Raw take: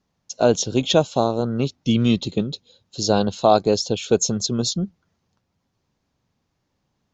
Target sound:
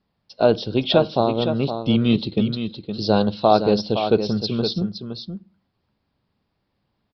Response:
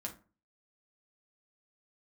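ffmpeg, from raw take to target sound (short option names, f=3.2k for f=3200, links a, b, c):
-filter_complex "[0:a]asplit=2[a][b];[1:a]atrim=start_sample=2205[c];[b][c]afir=irnorm=-1:irlink=0,volume=-11dB[d];[a][d]amix=inputs=2:normalize=0,aresample=11025,aresample=44100,asplit=2[e][f];[f]aecho=0:1:515:0.376[g];[e][g]amix=inputs=2:normalize=0,volume=-1.5dB"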